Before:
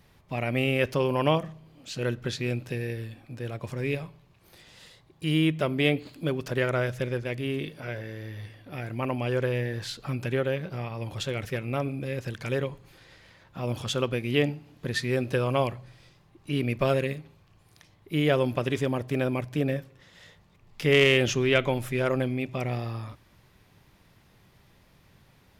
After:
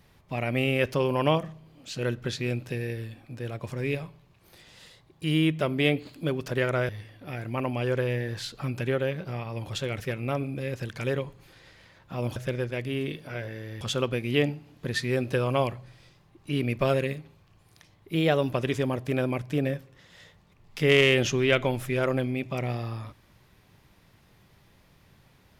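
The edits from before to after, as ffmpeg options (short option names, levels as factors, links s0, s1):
-filter_complex "[0:a]asplit=6[s0][s1][s2][s3][s4][s5];[s0]atrim=end=6.892[s6];[s1]atrim=start=8.338:end=13.812[s7];[s2]atrim=start=6.888:end=8.342[s8];[s3]atrim=start=13.808:end=18.154[s9];[s4]atrim=start=18.15:end=18.53,asetpts=PTS-STARTPTS,asetrate=47628,aresample=44100[s10];[s5]atrim=start=18.526[s11];[s6][s7]acrossfade=d=0.004:c1=hsin:c2=hsin[s12];[s12][s8]acrossfade=d=0.004:c1=hsin:c2=hsin[s13];[s13][s9]acrossfade=d=0.004:c1=hsin:c2=hsin[s14];[s14][s10]acrossfade=d=0.004:c1=hsin:c2=hsin[s15];[s15][s11]acrossfade=d=0.004:c1=hsin:c2=hsin"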